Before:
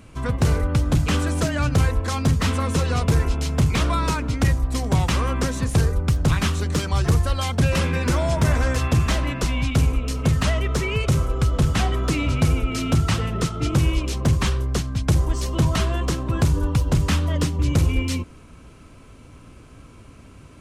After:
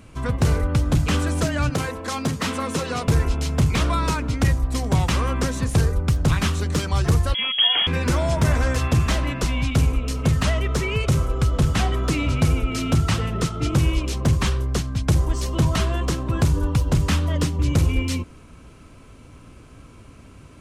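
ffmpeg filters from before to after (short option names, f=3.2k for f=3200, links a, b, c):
-filter_complex "[0:a]asettb=1/sr,asplit=3[a][b][c];[a]atrim=end=1.704[d];[b]atrim=start=1.7:end=3.08,asetpts=PTS-STARTPTS,afade=t=in:d=0.004:c=qsin,afade=t=out:st=1.376:d=0.004:c=qsin,highpass=180[e];[c]atrim=start=3.076[f];[d][e]acrossfade=d=0.004:c1=hsin:c2=qsin[g];[g][f]acrossfade=d=0.004:c1=qsin:c2=hsin,asettb=1/sr,asplit=3[h][i][j];[h]atrim=end=7.344[k];[i]atrim=start=7.34:end=7.87,asetpts=PTS-STARTPTS,afade=t=in:d=0.004:c=qsin,afade=t=out:st=0.526:d=0.004:c=qsin,lowpass=f=2.9k:t=q:w=0.5098,lowpass=f=2.9k:t=q:w=0.6013,lowpass=f=2.9k:t=q:w=0.9,lowpass=f=2.9k:t=q:w=2.563,afreqshift=-3400[l];[j]atrim=start=7.866[m];[k][l]acrossfade=d=0.004:c1=hsin:c2=qsin[n];[n][m]acrossfade=d=0.004:c1=qsin:c2=hsin"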